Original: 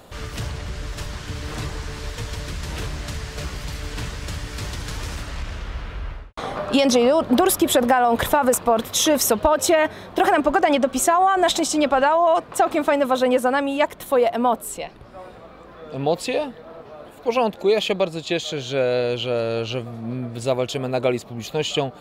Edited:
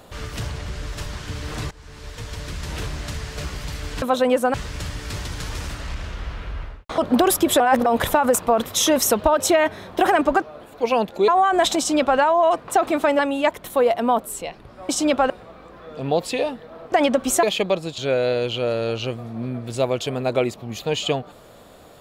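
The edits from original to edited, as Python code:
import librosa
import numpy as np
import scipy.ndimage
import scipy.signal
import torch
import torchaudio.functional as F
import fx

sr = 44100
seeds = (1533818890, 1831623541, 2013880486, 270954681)

y = fx.edit(x, sr, fx.fade_in_from(start_s=1.71, length_s=1.21, curve='qsin', floor_db=-20.5),
    fx.cut(start_s=6.46, length_s=0.71),
    fx.reverse_span(start_s=7.79, length_s=0.26),
    fx.swap(start_s=10.61, length_s=0.51, other_s=16.87, other_length_s=0.86),
    fx.duplicate(start_s=11.62, length_s=0.41, to_s=15.25),
    fx.move(start_s=13.03, length_s=0.52, to_s=4.02),
    fx.cut(start_s=18.28, length_s=0.38), tone=tone)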